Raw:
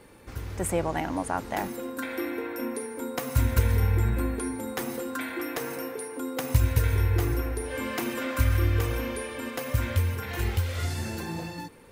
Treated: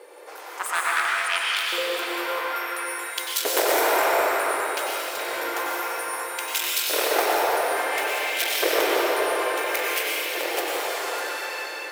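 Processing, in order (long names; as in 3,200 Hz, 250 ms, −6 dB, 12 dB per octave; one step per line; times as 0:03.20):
harmonic generator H 7 −12 dB, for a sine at −9.5 dBFS
linear-phase brick-wall high-pass 290 Hz
auto-filter high-pass saw up 0.58 Hz 460–4,500 Hz
convolution reverb RT60 5.0 s, pre-delay 89 ms, DRR −5 dB
in parallel at −8 dB: soft clipping −28 dBFS, distortion −10 dB
on the sum: level +3 dB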